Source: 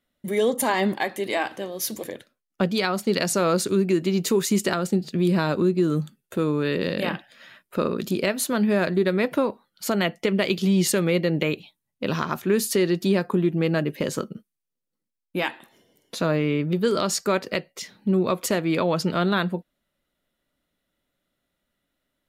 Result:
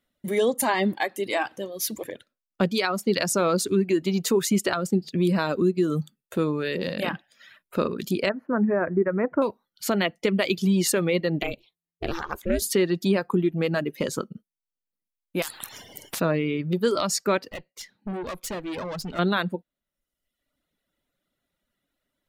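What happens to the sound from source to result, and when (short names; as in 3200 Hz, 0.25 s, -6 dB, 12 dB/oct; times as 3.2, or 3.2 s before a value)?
8.29–9.42 inverse Chebyshev low-pass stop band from 3400 Hz
11.42–12.62 ring modulator 170 Hz
15.42–16.2 spectral compressor 10:1
17.49–19.19 tube stage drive 28 dB, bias 0.75
whole clip: reverb removal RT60 0.95 s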